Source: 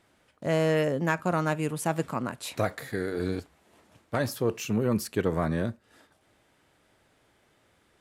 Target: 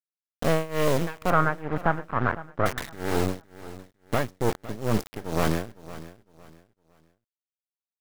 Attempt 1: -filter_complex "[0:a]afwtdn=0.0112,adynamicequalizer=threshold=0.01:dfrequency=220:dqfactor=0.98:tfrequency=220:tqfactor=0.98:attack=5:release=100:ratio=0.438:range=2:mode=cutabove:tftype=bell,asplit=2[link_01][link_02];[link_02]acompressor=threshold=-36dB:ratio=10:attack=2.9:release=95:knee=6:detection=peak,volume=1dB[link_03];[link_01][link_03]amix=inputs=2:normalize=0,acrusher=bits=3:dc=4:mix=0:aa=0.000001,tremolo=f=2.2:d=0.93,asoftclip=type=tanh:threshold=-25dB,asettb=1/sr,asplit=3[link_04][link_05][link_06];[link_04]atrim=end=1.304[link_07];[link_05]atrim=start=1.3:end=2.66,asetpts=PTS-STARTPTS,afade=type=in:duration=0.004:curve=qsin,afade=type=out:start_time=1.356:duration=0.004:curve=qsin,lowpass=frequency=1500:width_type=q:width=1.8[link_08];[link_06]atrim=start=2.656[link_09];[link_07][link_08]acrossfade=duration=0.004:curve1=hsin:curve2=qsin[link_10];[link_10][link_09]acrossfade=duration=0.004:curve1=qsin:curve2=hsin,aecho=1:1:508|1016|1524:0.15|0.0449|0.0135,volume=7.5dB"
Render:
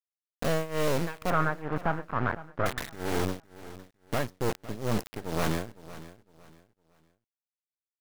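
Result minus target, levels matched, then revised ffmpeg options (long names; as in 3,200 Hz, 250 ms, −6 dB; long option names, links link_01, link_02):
downward compressor: peak gain reduction +6.5 dB; soft clipping: distortion +6 dB
-filter_complex "[0:a]afwtdn=0.0112,adynamicequalizer=threshold=0.01:dfrequency=220:dqfactor=0.98:tfrequency=220:tqfactor=0.98:attack=5:release=100:ratio=0.438:range=2:mode=cutabove:tftype=bell,asplit=2[link_01][link_02];[link_02]acompressor=threshold=-29dB:ratio=10:attack=2.9:release=95:knee=6:detection=peak,volume=1dB[link_03];[link_01][link_03]amix=inputs=2:normalize=0,acrusher=bits=3:dc=4:mix=0:aa=0.000001,tremolo=f=2.2:d=0.93,asoftclip=type=tanh:threshold=-17.5dB,asettb=1/sr,asplit=3[link_04][link_05][link_06];[link_04]atrim=end=1.304[link_07];[link_05]atrim=start=1.3:end=2.66,asetpts=PTS-STARTPTS,afade=type=in:duration=0.004:curve=qsin,afade=type=out:start_time=1.356:duration=0.004:curve=qsin,lowpass=frequency=1500:width_type=q:width=1.8[link_08];[link_06]atrim=start=2.656[link_09];[link_07][link_08]acrossfade=duration=0.004:curve1=hsin:curve2=qsin[link_10];[link_10][link_09]acrossfade=duration=0.004:curve1=qsin:curve2=hsin,aecho=1:1:508|1016|1524:0.15|0.0449|0.0135,volume=7.5dB"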